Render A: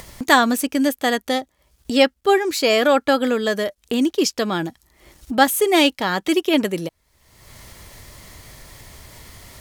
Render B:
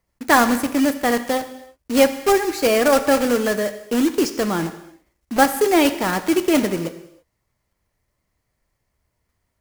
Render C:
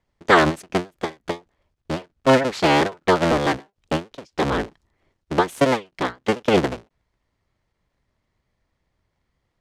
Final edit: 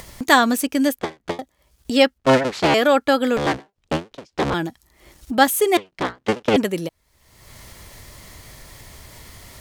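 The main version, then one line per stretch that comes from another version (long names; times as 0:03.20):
A
0:00.99–0:01.39: punch in from C
0:02.18–0:02.74: punch in from C
0:03.37–0:04.54: punch in from C
0:05.77–0:06.56: punch in from C
not used: B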